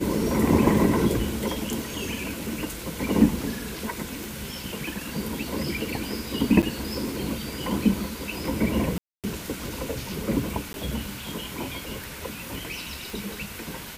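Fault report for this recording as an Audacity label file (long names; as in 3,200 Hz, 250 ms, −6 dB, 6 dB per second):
4.240000	4.240000	click
6.620000	6.630000	drop-out 8.2 ms
8.980000	9.240000	drop-out 257 ms
10.730000	10.740000	drop-out 11 ms
13.100000	13.100000	click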